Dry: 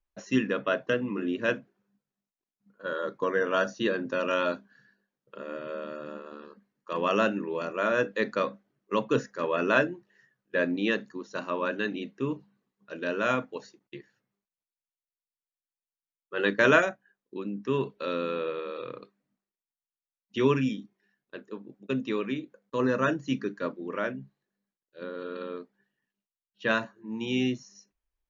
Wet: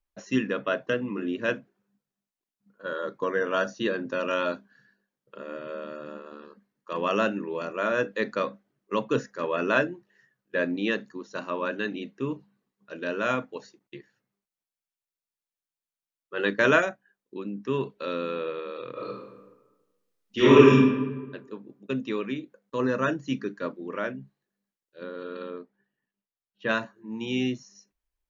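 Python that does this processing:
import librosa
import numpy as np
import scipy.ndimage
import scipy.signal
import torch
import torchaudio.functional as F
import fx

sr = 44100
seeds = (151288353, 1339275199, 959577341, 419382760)

y = fx.reverb_throw(x, sr, start_s=18.93, length_s=1.78, rt60_s=1.2, drr_db=-11.0)
y = fx.lowpass(y, sr, hz=2100.0, slope=6, at=(25.5, 26.69))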